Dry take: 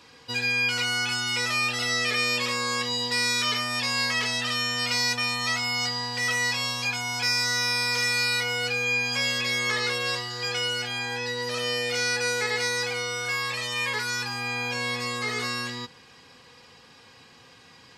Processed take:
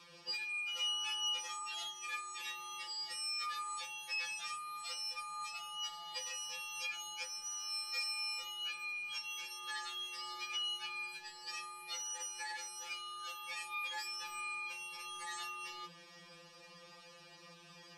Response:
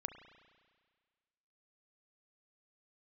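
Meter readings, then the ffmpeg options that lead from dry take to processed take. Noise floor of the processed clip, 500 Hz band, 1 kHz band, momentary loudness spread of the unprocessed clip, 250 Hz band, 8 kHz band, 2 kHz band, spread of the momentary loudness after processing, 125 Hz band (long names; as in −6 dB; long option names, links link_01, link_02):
−58 dBFS, −27.5 dB, −12.0 dB, 6 LU, below −25 dB, −11.0 dB, −17.5 dB, 14 LU, below −30 dB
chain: -af "acompressor=threshold=-32dB:ratio=6,afftfilt=real='re*2.83*eq(mod(b,8),0)':imag='im*2.83*eq(mod(b,8),0)':win_size=2048:overlap=0.75,volume=-2.5dB"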